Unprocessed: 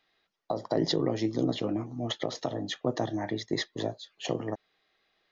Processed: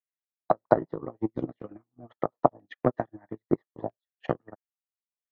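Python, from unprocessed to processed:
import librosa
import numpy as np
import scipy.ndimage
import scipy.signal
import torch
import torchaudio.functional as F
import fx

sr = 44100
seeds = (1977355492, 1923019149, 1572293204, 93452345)

y = fx.transient(x, sr, attack_db=11, sustain_db=-4)
y = fx.filter_lfo_lowpass(y, sr, shape='saw_down', hz=0.77, low_hz=940.0, high_hz=2300.0, q=2.5)
y = fx.upward_expand(y, sr, threshold_db=-41.0, expansion=2.5)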